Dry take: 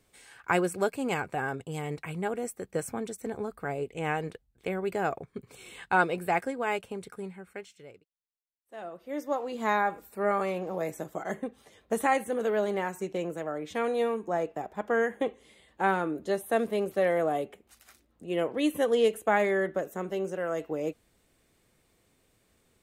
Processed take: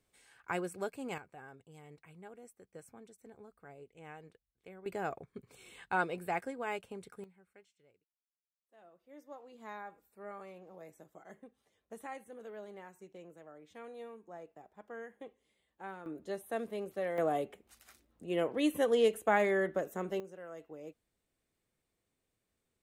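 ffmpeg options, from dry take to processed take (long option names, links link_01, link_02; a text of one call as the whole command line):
ffmpeg -i in.wav -af "asetnsamples=nb_out_samples=441:pad=0,asendcmd='1.18 volume volume -20dB;4.86 volume volume -8dB;7.24 volume volume -19.5dB;16.06 volume volume -10.5dB;17.18 volume volume -3.5dB;20.2 volume volume -16dB',volume=-10.5dB" out.wav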